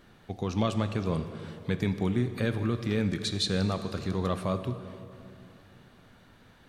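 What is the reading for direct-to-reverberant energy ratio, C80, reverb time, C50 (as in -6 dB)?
9.5 dB, 11.0 dB, 2.8 s, 10.0 dB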